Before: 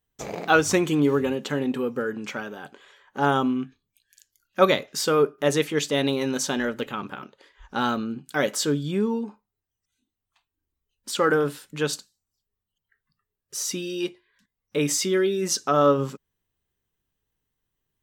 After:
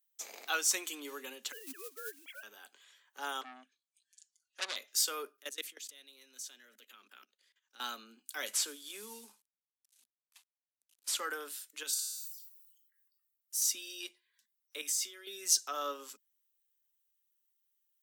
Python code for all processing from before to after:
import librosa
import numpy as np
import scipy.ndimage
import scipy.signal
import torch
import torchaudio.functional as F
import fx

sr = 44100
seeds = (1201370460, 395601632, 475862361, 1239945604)

y = fx.chain(x, sr, fx.sine_speech(),
    fx.quant_companded(bits=6), at=(1.52, 2.43))
y = fx.chain(y, sr, fx.steep_lowpass(hz=9700.0, slope=48),
    fx.env_flanger(rest_ms=5.5, full_db=-18.0),
    fx.transformer_sat(knee_hz=3000.0), at=(3.41, 4.76))
y = fx.chain(y, sr, fx.peak_eq(hz=880.0, db=-8.5, octaves=0.79),
    fx.level_steps(step_db=21), at=(5.37, 7.8))
y = fx.chain(y, sr, fx.cvsd(bps=64000),
    fx.band_squash(depth_pct=40), at=(8.46, 11.2))
y = fx.chain(y, sr, fx.high_shelf(hz=6500.0, db=9.0),
    fx.comb_fb(f0_hz=140.0, decay_s=0.35, harmonics='all', damping=0.0, mix_pct=70),
    fx.sustainer(db_per_s=48.0), at=(11.83, 13.62))
y = fx.chain(y, sr, fx.low_shelf(hz=190.0, db=-10.5),
    fx.level_steps(step_db=16), at=(14.81, 15.27))
y = scipy.signal.sosfilt(scipy.signal.butter(16, 210.0, 'highpass', fs=sr, output='sos'), y)
y = np.diff(y, prepend=0.0)